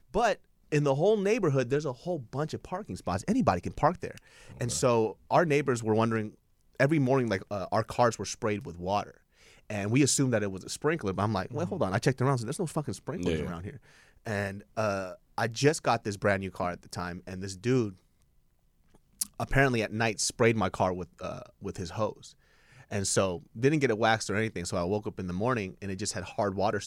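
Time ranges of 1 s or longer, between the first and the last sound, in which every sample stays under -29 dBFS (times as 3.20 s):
17.88–19.21 s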